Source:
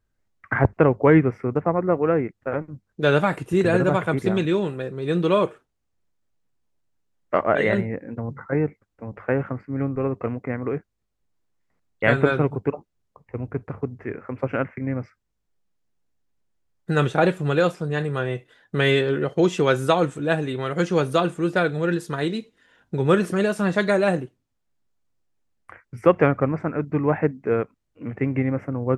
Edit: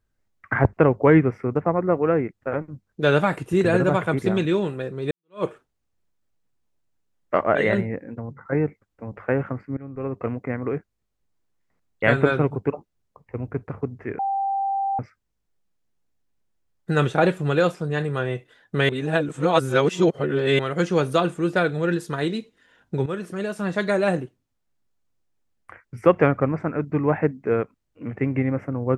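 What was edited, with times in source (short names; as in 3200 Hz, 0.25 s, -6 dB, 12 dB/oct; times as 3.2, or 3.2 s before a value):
5.11–5.44 fade in exponential
7.94–8.45 fade out, to -7.5 dB
9.77–10.28 fade in, from -21 dB
14.19–14.99 bleep 786 Hz -21 dBFS
18.89–20.59 reverse
23.06–24.22 fade in, from -13.5 dB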